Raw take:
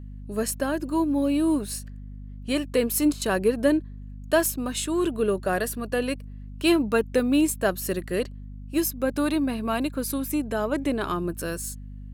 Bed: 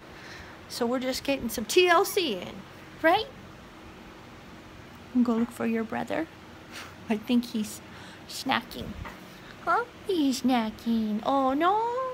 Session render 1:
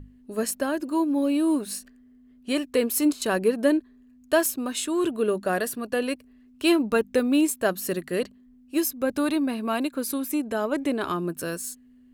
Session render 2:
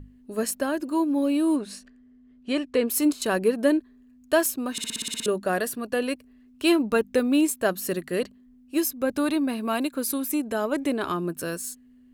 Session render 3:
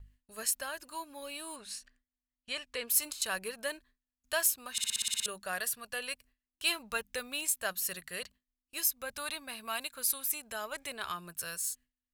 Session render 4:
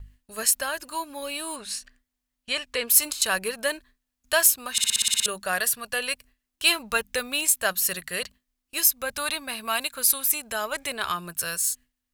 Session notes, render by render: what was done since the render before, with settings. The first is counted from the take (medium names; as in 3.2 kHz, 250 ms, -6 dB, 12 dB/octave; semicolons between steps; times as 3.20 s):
hum notches 50/100/150/200 Hz
1.56–2.88 s: distance through air 72 m; 4.72 s: stutter in place 0.06 s, 9 plays; 9.48–10.93 s: treble shelf 6 kHz +4 dB
gate with hold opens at -43 dBFS; amplifier tone stack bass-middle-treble 10-0-10
trim +10 dB